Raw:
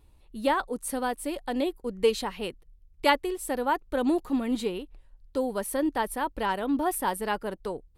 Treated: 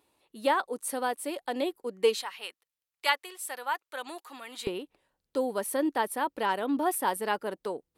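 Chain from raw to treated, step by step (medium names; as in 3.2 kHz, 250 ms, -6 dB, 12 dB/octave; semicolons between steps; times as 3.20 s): high-pass 340 Hz 12 dB/octave, from 2.21 s 1.1 kHz, from 4.67 s 250 Hz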